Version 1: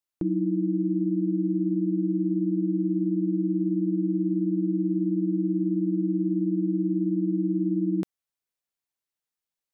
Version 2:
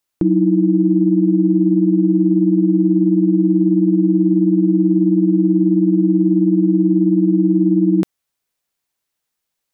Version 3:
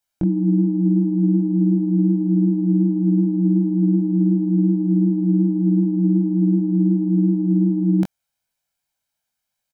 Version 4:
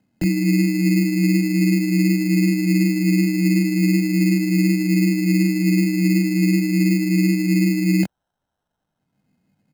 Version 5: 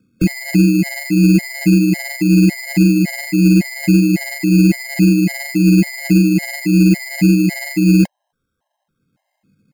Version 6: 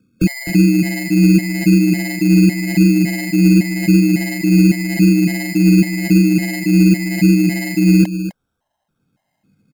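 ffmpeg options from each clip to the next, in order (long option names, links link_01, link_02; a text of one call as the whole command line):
ffmpeg -i in.wav -af "acontrast=36,volume=6dB" out.wav
ffmpeg -i in.wav -af "aecho=1:1:1.3:0.59,flanger=delay=19.5:depth=2.8:speed=2.7" out.wav
ffmpeg -i in.wav -filter_complex "[0:a]acrossover=split=140|260|400[link_01][link_02][link_03][link_04];[link_02]acompressor=mode=upward:threshold=-37dB:ratio=2.5[link_05];[link_01][link_05][link_03][link_04]amix=inputs=4:normalize=0,acrusher=samples=19:mix=1:aa=0.000001" out.wav
ffmpeg -i in.wav -af "acontrast=74,afftfilt=real='re*gt(sin(2*PI*1.8*pts/sr)*(1-2*mod(floor(b*sr/1024/540),2)),0)':imag='im*gt(sin(2*PI*1.8*pts/sr)*(1-2*mod(floor(b*sr/1024/540),2)),0)':win_size=1024:overlap=0.75,volume=1.5dB" out.wav
ffmpeg -i in.wav -af "aecho=1:1:255:0.266" out.wav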